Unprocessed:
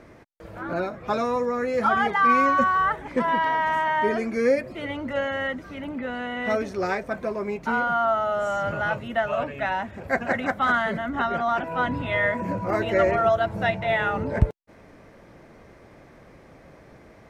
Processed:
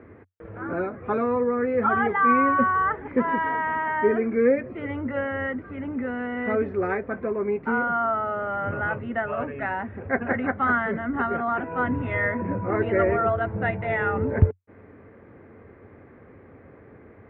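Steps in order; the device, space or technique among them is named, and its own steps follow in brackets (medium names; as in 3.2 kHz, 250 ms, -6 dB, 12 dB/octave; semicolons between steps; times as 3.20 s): bass cabinet (cabinet simulation 68–2100 Hz, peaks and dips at 92 Hz +10 dB, 160 Hz -4 dB, 250 Hz +4 dB, 430 Hz +6 dB, 630 Hz -6 dB, 920 Hz -3 dB)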